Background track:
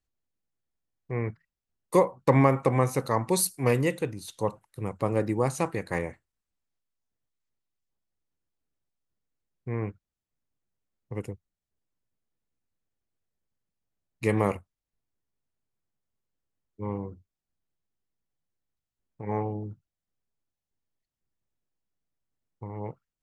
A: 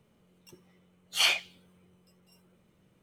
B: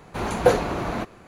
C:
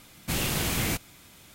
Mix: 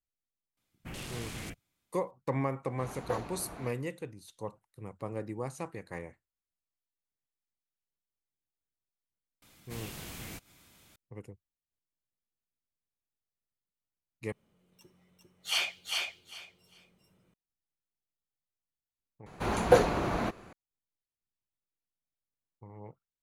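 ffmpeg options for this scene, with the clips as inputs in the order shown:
-filter_complex "[3:a]asplit=2[s0][s1];[2:a]asplit=2[s2][s3];[0:a]volume=0.266[s4];[s0]afwtdn=0.0141[s5];[s1]acompressor=mode=upward:threshold=0.0178:ratio=2.5:attack=3.2:release=140:knee=2.83:detection=peak[s6];[1:a]aecho=1:1:400|800|1200:0.708|0.135|0.0256[s7];[s4]asplit=3[s8][s9][s10];[s8]atrim=end=14.324[s11];[s7]atrim=end=3.02,asetpts=PTS-STARTPTS,volume=0.531[s12];[s9]atrim=start=17.336:end=19.264[s13];[s3]atrim=end=1.27,asetpts=PTS-STARTPTS,volume=0.668[s14];[s10]atrim=start=20.526[s15];[s5]atrim=end=1.54,asetpts=PTS-STARTPTS,volume=0.224,afade=t=in:d=0.004:c=hsin,afade=t=out:st=1.536:d=0.004:c=hsin,adelay=570[s16];[s2]atrim=end=1.27,asetpts=PTS-STARTPTS,volume=0.126,afade=t=in:d=0.004:c=hsin,afade=t=out:st=1.266:d=0.004:c=hsin,adelay=2640[s17];[s6]atrim=end=1.54,asetpts=PTS-STARTPTS,volume=0.158,afade=t=in:d=0.004:c=hsin,afade=t=out:st=1.536:d=0.004:c=hsin,adelay=9420[s18];[s11][s12]acrossfade=d=0.004:c1=hsin:c2=hsin[s19];[s19][s13]acrossfade=d=0.004:c1=hsin:c2=hsin[s20];[s20][s14]acrossfade=d=0.004:c1=hsin:c2=hsin[s21];[s21][s15]acrossfade=d=0.004:c1=hsin:c2=hsin[s22];[s22][s16][s17][s18]amix=inputs=4:normalize=0"

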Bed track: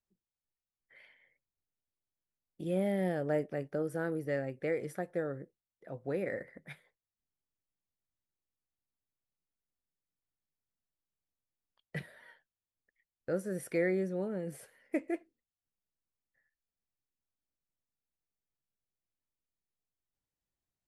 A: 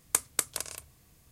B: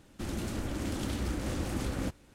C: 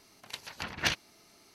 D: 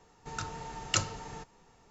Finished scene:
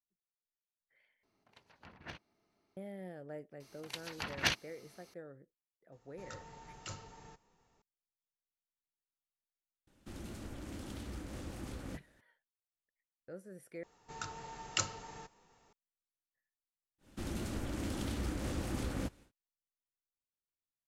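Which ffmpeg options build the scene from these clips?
-filter_complex "[3:a]asplit=2[s0][s1];[4:a]asplit=2[s2][s3];[2:a]asplit=2[s4][s5];[0:a]volume=0.188[s6];[s0]lowpass=f=1100:p=1[s7];[s2]alimiter=limit=0.0794:level=0:latency=1:release=13[s8];[s3]lowshelf=f=240:g=-6[s9];[s6]asplit=3[s10][s11][s12];[s10]atrim=end=1.234[s13];[s7]atrim=end=1.54,asetpts=PTS-STARTPTS,volume=0.211[s14];[s11]atrim=start=2.766:end=13.834[s15];[s9]atrim=end=1.9,asetpts=PTS-STARTPTS,volume=0.596[s16];[s12]atrim=start=15.726[s17];[s1]atrim=end=1.54,asetpts=PTS-STARTPTS,volume=0.75,afade=t=in:d=0.004:c=hsin,afade=t=out:st=1.536:d=0.004:c=hsin,adelay=3600[s18];[s8]atrim=end=1.9,asetpts=PTS-STARTPTS,volume=0.266,afade=t=in:d=0.004:c=hsin,afade=t=out:st=1.896:d=0.004:c=hsin,adelay=5920[s19];[s4]atrim=end=2.34,asetpts=PTS-STARTPTS,volume=0.282,afade=t=in:d=0.004:c=hsin,afade=t=out:st=2.336:d=0.004:c=hsin,adelay=9870[s20];[s5]atrim=end=2.34,asetpts=PTS-STARTPTS,volume=0.631,afade=t=in:d=0.1,afade=t=out:st=2.24:d=0.1,adelay=16980[s21];[s13][s14]acrossfade=d=0.004:c1=hsin:c2=hsin[s22];[s22][s15]acrossfade=d=0.004:c1=hsin:c2=hsin[s23];[s23][s16]acrossfade=d=0.004:c1=hsin:c2=hsin[s24];[s24][s17]acrossfade=d=0.004:c1=hsin:c2=hsin[s25];[s25][s18][s19][s20][s21]amix=inputs=5:normalize=0"

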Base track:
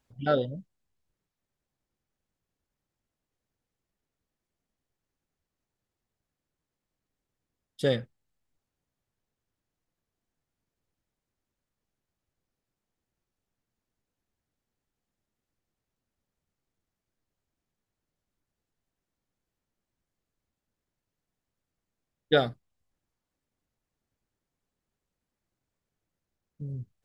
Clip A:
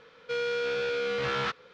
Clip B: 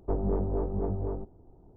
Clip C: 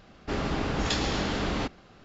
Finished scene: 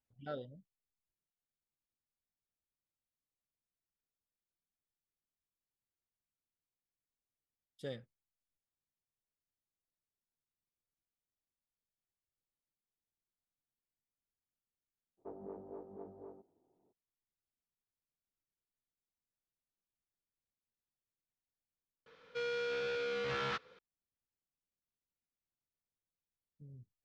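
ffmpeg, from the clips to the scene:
-filter_complex "[0:a]volume=0.133[s0];[2:a]highpass=270[s1];[s0]asplit=2[s2][s3];[s2]atrim=end=22.064[s4];[1:a]atrim=end=1.73,asetpts=PTS-STARTPTS,volume=0.422[s5];[s3]atrim=start=23.786[s6];[s1]atrim=end=1.76,asetpts=PTS-STARTPTS,volume=0.178,afade=t=in:d=0.02,afade=t=out:st=1.74:d=0.02,adelay=15170[s7];[s4][s5]acrossfade=d=0.004:c1=hsin:c2=hsin[s8];[s8][s6]acrossfade=d=0.004:c1=hsin:c2=hsin[s9];[s9][s7]amix=inputs=2:normalize=0"

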